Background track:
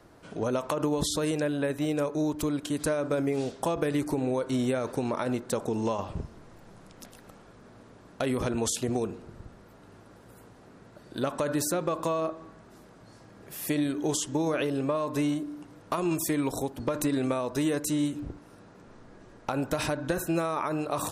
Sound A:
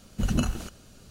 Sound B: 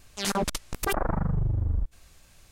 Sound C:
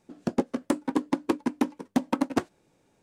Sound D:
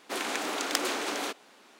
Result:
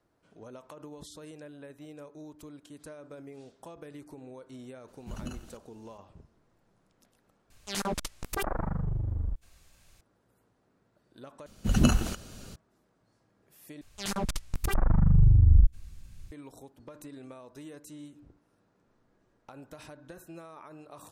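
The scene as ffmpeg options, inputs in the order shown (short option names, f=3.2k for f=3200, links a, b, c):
-filter_complex "[1:a]asplit=2[a][b];[2:a]asplit=2[c][d];[0:a]volume=-18.5dB[e];[b]dynaudnorm=f=180:g=3:m=10dB[f];[d]asubboost=boost=11:cutoff=210[g];[e]asplit=4[h][i][j][k];[h]atrim=end=7.504[l];[c]atrim=end=2.51,asetpts=PTS-STARTPTS,volume=-5dB[m];[i]atrim=start=10.006:end=11.464[n];[f]atrim=end=1.1,asetpts=PTS-STARTPTS,volume=-4dB[o];[j]atrim=start=12.556:end=13.814[p];[g]atrim=end=2.51,asetpts=PTS-STARTPTS,volume=-6dB[q];[k]atrim=start=16.316[r];[a]atrim=end=1.1,asetpts=PTS-STARTPTS,volume=-14.5dB,afade=t=in:d=0.004:c=hsin,afade=t=out:st=1.096:d=0.004:c=hsin,adelay=4880[s];[l][m]acrossfade=d=0.004:c1=hsin:c2=hsin[t];[t][n]acrossfade=d=0.004:c1=hsin:c2=hsin[u];[u][o]acrossfade=d=0.004:c1=hsin:c2=hsin[v];[v][p]acrossfade=d=0.004:c1=hsin:c2=hsin[w];[w][q]acrossfade=d=0.004:c1=hsin:c2=hsin[x];[x][r]acrossfade=d=0.004:c1=hsin:c2=hsin[y];[y][s]amix=inputs=2:normalize=0"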